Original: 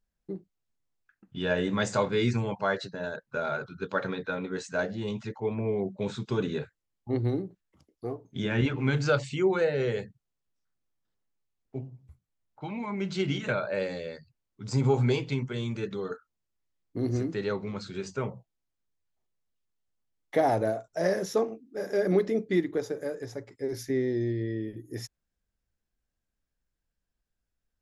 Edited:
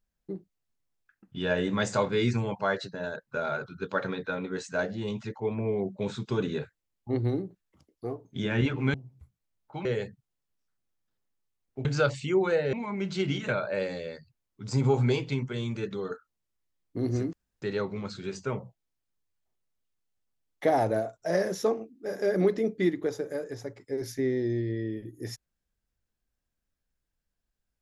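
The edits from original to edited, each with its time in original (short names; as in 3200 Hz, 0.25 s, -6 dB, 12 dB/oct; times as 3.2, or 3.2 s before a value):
8.94–9.82 swap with 11.82–12.73
17.33 insert room tone 0.29 s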